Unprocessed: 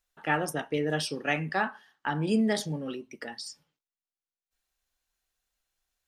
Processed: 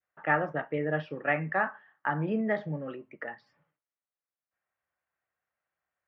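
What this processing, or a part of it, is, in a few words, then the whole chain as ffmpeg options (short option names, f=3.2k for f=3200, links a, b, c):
bass cabinet: -af "highpass=f=90:w=0.5412,highpass=f=90:w=1.3066,equalizer=f=240:t=q:w=4:g=-8,equalizer=f=400:t=q:w=4:g=-4,equalizer=f=600:t=q:w=4:g=5,equalizer=f=1.2k:t=q:w=4:g=4,equalizer=f=1.9k:t=q:w=4:g=4,lowpass=f=2.1k:w=0.5412,lowpass=f=2.1k:w=1.3066,adynamicequalizer=threshold=0.00891:dfrequency=990:dqfactor=1:tfrequency=990:tqfactor=1:attack=5:release=100:ratio=0.375:range=2:mode=cutabove:tftype=bell"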